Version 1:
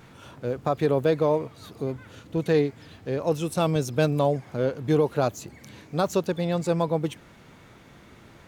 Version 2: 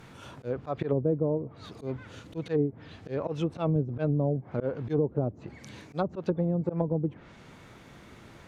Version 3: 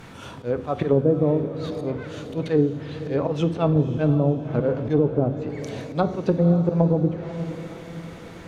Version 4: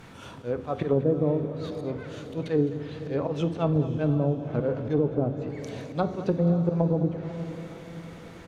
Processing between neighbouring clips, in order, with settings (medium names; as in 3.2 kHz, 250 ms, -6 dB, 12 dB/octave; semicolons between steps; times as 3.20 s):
slow attack 121 ms; low-pass that closes with the level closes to 370 Hz, closed at -21.5 dBFS
echo that smears into a reverb 527 ms, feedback 48%, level -11.5 dB; on a send at -10 dB: reverberation RT60 0.70 s, pre-delay 4 ms; on the sum: trim +7 dB
delay 210 ms -15 dB; trim -4.5 dB